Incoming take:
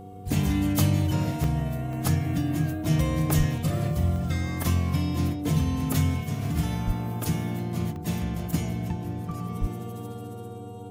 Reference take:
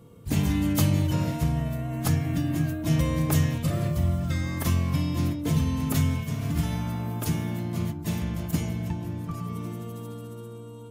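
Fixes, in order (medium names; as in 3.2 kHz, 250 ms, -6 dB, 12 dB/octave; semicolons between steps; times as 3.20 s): de-hum 96.7 Hz, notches 5; band-stop 730 Hz, Q 30; 3.37–3.49 s: high-pass 140 Hz 24 dB/octave; 6.86–6.98 s: high-pass 140 Hz 24 dB/octave; 9.60–9.72 s: high-pass 140 Hz 24 dB/octave; interpolate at 1.44/1.93/2.86/3.68/4.16/6.45/7.96/8.53 s, 1.3 ms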